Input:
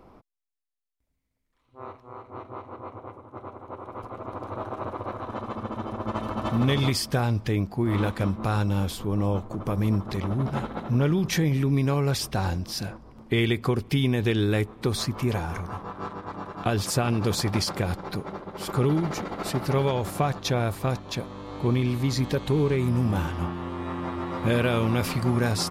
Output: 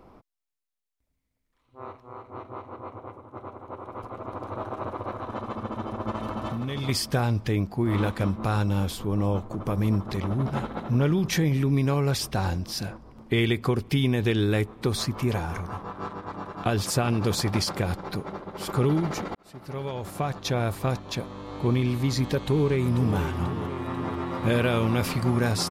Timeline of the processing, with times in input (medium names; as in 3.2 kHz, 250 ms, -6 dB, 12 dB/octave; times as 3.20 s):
6.15–6.89 s: compression 12:1, threshold -26 dBFS
19.35–20.72 s: fade in
22.36–23.17 s: echo throw 490 ms, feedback 65%, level -11 dB